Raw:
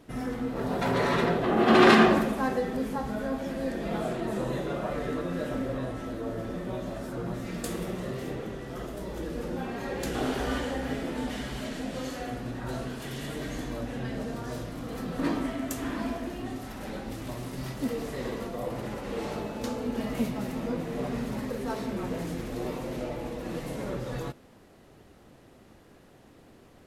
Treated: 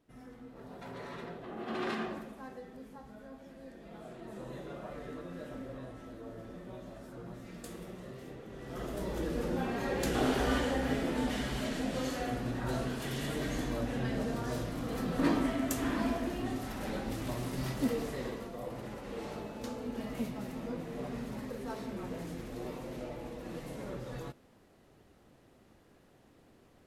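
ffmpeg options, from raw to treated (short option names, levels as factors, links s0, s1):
-af "afade=t=in:st=3.94:d=0.71:silence=0.473151,afade=t=in:st=8.47:d=0.52:silence=0.251189,afade=t=out:st=17.81:d=0.62:silence=0.421697"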